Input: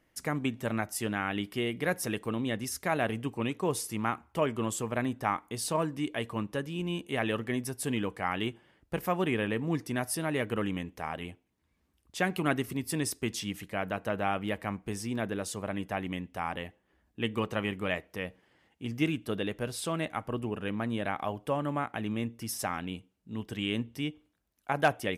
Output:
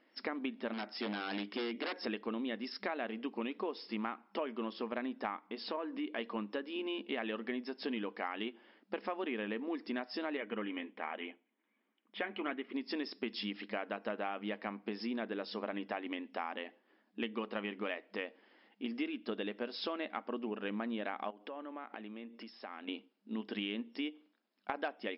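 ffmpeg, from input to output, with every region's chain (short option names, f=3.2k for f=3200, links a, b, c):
-filter_complex "[0:a]asettb=1/sr,asplit=3[a][b][c];[a]atrim=end=0.734[d];[b]atrim=start=0.73:end=1.94,asetpts=PTS-STARTPTS,afade=t=in:d=0.004:c=qsin,afade=t=out:st=1.206:d=0.004:c=qsin,highshelf=f=9.6k:g=-2.5,aeval=exprs='0.0355*(abs(mod(val(0)/0.0355+3,4)-2)-1)':c=same[e];[c]atrim=start=1.936[f];[d][e]acrossfade=d=0.004:c1=hsin:c2=qsin[g];[g][f]acrossfade=d=0.004:c1=qsin:c2=hsin,asettb=1/sr,asplit=3[h][i][j];[h]atrim=end=5.474[k];[i]atrim=start=5.47:end=6.19,asetpts=PTS-STARTPTS,afade=t=in:d=0.004:c=qsin,afade=t=out:st=0.716:d=0.004:c=qsin,highpass=110,lowpass=3.6k,acompressor=threshold=-39dB:ratio=1.5:attack=3.2:release=140:knee=1:detection=peak[l];[j]atrim=start=6.186[m];[k][l]acrossfade=d=0.004:c1=hsin:c2=qsin[n];[n][m]acrossfade=d=0.004:c1=qsin:c2=hsin,asettb=1/sr,asplit=3[o][p][q];[o]atrim=end=10.374[r];[p]atrim=start=10.37:end=12.74,asetpts=PTS-STARTPTS,afade=t=in:d=0.004:c=qsin,afade=t=out:st=2.366:d=0.004:c=qsin,highshelf=f=3.7k:t=q:w=3:g=-10,bandreject=f=2.7k:w=6.5,flanger=delay=1.3:depth=6.9:regen=-57:speed=1.3:shape=triangular[s];[q]atrim=start=12.736[t];[r][s]acrossfade=d=0.004:c1=hsin:c2=qsin[u];[u][t]acrossfade=d=0.004:c1=qsin:c2=hsin,asettb=1/sr,asplit=3[v][w][x];[v]atrim=end=21.304[y];[w]atrim=start=21.3:end=22.88,asetpts=PTS-STARTPTS,afade=t=in:d=0.004:c=qsin,afade=t=out:st=1.576:d=0.004:c=qsin,acompressor=threshold=-42dB:ratio=10:attack=3.2:release=140:knee=1:detection=peak,highpass=220,lowpass=4.4k[z];[x]atrim=start=22.876[aa];[y][z]acrossfade=d=0.004:c1=hsin:c2=qsin[ab];[ab][aa]acrossfade=d=0.004:c1=qsin:c2=hsin,afftfilt=real='re*between(b*sr/4096,200,5400)':imag='im*between(b*sr/4096,200,5400)':win_size=4096:overlap=0.75,acompressor=threshold=-37dB:ratio=6,volume=2dB"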